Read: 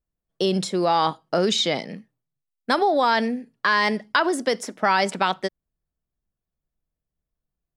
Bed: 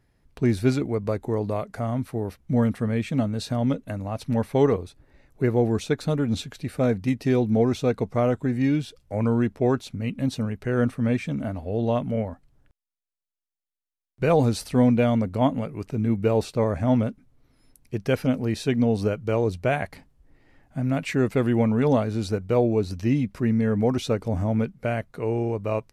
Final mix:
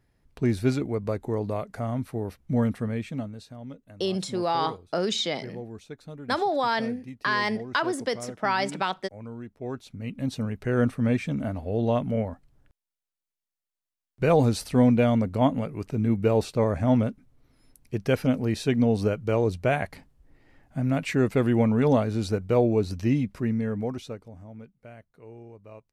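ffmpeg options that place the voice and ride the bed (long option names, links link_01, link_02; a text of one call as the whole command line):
ffmpeg -i stem1.wav -i stem2.wav -filter_complex "[0:a]adelay=3600,volume=-5.5dB[link_01];[1:a]volume=14dB,afade=type=out:start_time=2.72:duration=0.76:silence=0.188365,afade=type=in:start_time=9.54:duration=1.16:silence=0.149624,afade=type=out:start_time=23.01:duration=1.31:silence=0.105925[link_02];[link_01][link_02]amix=inputs=2:normalize=0" out.wav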